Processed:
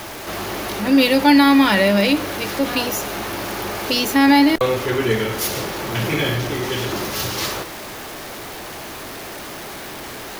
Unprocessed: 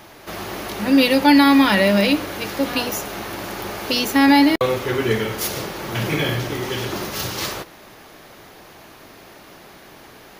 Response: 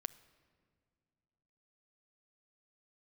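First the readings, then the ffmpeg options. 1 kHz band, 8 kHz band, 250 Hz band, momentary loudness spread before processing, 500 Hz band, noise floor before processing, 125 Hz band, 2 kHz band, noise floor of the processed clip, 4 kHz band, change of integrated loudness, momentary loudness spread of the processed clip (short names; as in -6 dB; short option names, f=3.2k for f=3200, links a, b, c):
+1.0 dB, +3.0 dB, +0.5 dB, 16 LU, +1.0 dB, -45 dBFS, +1.0 dB, +1.0 dB, -33 dBFS, +1.0 dB, +0.5 dB, 18 LU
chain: -af "aeval=exprs='val(0)+0.5*0.0355*sgn(val(0))':c=same,equalizer=f=170:t=o:w=0.37:g=-3"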